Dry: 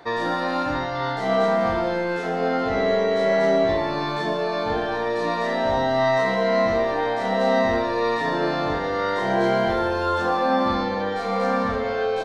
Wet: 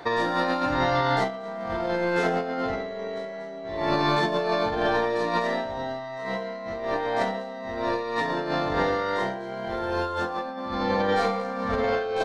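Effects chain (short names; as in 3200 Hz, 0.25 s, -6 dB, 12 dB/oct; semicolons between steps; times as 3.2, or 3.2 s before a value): negative-ratio compressor -26 dBFS, ratio -0.5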